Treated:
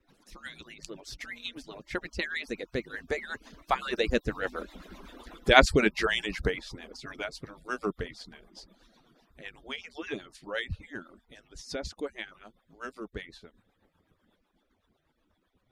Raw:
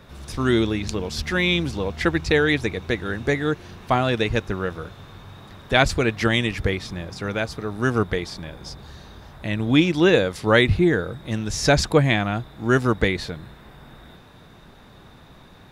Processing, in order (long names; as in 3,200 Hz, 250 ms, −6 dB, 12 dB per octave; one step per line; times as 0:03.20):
harmonic-percussive split with one part muted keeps percussive
source passing by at 0:05.01, 18 m/s, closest 13 metres
rotating-speaker cabinet horn 8 Hz
level +4.5 dB